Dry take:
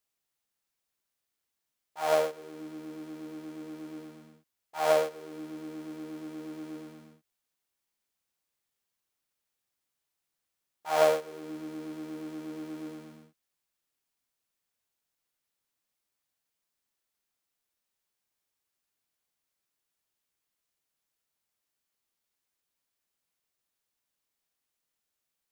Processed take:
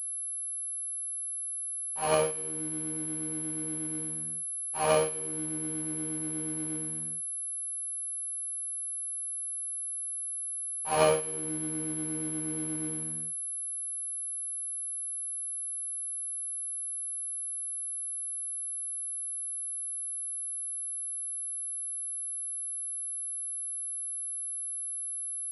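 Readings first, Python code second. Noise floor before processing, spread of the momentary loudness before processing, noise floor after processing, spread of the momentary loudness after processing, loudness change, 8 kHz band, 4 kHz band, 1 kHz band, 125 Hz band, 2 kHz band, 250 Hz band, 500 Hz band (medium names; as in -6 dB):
-85 dBFS, 19 LU, -36 dBFS, 3 LU, +1.5 dB, +24.5 dB, +1.5 dB, 0.0 dB, +11.0 dB, +0.5 dB, +2.0 dB, -1.0 dB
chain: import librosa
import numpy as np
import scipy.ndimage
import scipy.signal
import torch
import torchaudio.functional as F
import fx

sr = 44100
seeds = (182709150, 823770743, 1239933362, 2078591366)

p1 = fx.low_shelf_res(x, sr, hz=190.0, db=7.0, q=1.5)
p2 = fx.notch(p1, sr, hz=3600.0, q=12.0)
p3 = fx.noise_reduce_blind(p2, sr, reduce_db=7)
p4 = fx.sample_hold(p3, sr, seeds[0], rate_hz=1800.0, jitter_pct=0)
p5 = p3 + F.gain(torch.from_numpy(p4), -5.0).numpy()
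p6 = fx.notch_comb(p5, sr, f0_hz=680.0)
p7 = p6 + fx.echo_wet_highpass(p6, sr, ms=162, feedback_pct=33, hz=1700.0, wet_db=-21.0, dry=0)
y = fx.pwm(p7, sr, carrier_hz=11000.0)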